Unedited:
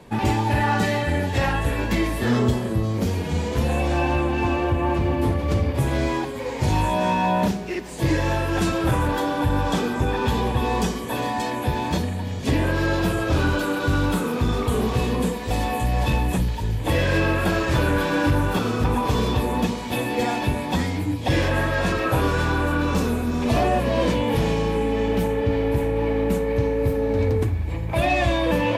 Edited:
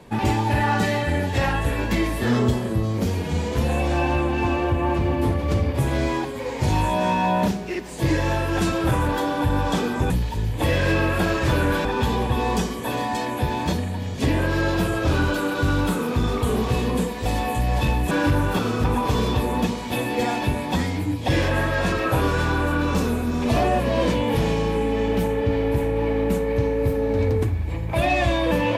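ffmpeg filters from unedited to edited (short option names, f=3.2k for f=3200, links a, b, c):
-filter_complex "[0:a]asplit=4[a][b][c][d];[a]atrim=end=10.102[e];[b]atrim=start=16.358:end=18.112[f];[c]atrim=start=10.098:end=16.362[g];[d]atrim=start=18.108[h];[e][f]acrossfade=d=0.004:c1=hsin:c2=hsin[i];[i][g]acrossfade=d=0.004:c1=hsin:c2=hsin[j];[j][h]acrossfade=d=0.004:c1=hsin:c2=hsin"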